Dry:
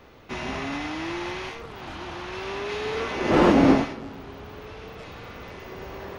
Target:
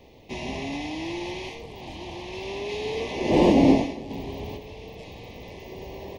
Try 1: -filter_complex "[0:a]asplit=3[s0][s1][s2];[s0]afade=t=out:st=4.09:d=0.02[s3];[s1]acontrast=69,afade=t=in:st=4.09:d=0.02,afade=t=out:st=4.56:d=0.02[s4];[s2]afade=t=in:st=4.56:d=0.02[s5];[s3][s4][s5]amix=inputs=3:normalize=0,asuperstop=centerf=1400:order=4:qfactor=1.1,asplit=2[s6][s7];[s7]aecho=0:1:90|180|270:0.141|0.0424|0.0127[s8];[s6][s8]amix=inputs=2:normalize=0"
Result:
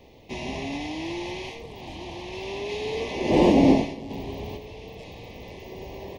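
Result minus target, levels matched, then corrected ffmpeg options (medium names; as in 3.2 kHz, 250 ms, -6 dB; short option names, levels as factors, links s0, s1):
echo 67 ms early
-filter_complex "[0:a]asplit=3[s0][s1][s2];[s0]afade=t=out:st=4.09:d=0.02[s3];[s1]acontrast=69,afade=t=in:st=4.09:d=0.02,afade=t=out:st=4.56:d=0.02[s4];[s2]afade=t=in:st=4.56:d=0.02[s5];[s3][s4][s5]amix=inputs=3:normalize=0,asuperstop=centerf=1400:order=4:qfactor=1.1,asplit=2[s6][s7];[s7]aecho=0:1:157|314|471:0.141|0.0424|0.0127[s8];[s6][s8]amix=inputs=2:normalize=0"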